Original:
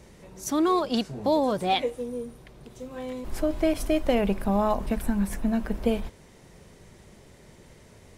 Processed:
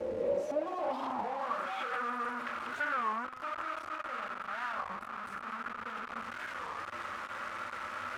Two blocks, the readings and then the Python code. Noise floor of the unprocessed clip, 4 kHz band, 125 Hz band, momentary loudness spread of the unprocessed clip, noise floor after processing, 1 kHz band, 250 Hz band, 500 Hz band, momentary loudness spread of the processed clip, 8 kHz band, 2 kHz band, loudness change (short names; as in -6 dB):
-53 dBFS, -12.5 dB, under -20 dB, 13 LU, -45 dBFS, -3.5 dB, -20.0 dB, -10.0 dB, 7 LU, under -15 dB, +3.5 dB, -10.0 dB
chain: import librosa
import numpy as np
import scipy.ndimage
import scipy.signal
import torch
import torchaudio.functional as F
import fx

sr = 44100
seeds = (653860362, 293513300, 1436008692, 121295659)

y = fx.room_shoebox(x, sr, seeds[0], volume_m3=92.0, walls='mixed', distance_m=0.58)
y = fx.over_compress(y, sr, threshold_db=-34.0, ratio=-1.0)
y = y + 0.86 * np.pad(y, (int(3.6 * sr / 1000.0), 0))[:len(y)]
y = fx.quant_companded(y, sr, bits=2)
y = fx.graphic_eq_15(y, sr, hz=(100, 250, 2500), db=(10, -4, 4))
y = fx.filter_sweep_bandpass(y, sr, from_hz=470.0, to_hz=1300.0, start_s=0.19, end_s=1.67, q=6.7)
y = fx.peak_eq(y, sr, hz=240.0, db=8.5, octaves=0.23)
y = y + 10.0 ** (-16.5 / 20.0) * np.pad(y, (int(276 * sr / 1000.0), 0))[:len(y)]
y = fx.record_warp(y, sr, rpm=33.33, depth_cents=250.0)
y = y * librosa.db_to_amplitude(6.5)